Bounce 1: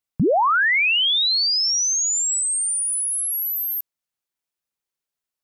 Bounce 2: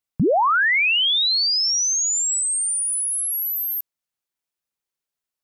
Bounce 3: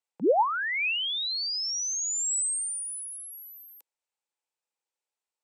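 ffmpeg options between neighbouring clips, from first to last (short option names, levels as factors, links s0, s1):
-af anull
-filter_complex "[0:a]acrossover=split=420[s0][s1];[s1]acompressor=threshold=0.0562:ratio=6[s2];[s0][s2]amix=inputs=2:normalize=0,highpass=f=290:w=0.5412,highpass=f=290:w=1.3066,equalizer=f=500:t=q:w=4:g=7,equalizer=f=860:t=q:w=4:g=10,equalizer=f=2500:t=q:w=4:g=4,equalizer=f=8000:t=q:w=4:g=5,lowpass=f=9100:w=0.5412,lowpass=f=9100:w=1.3066,volume=0.562"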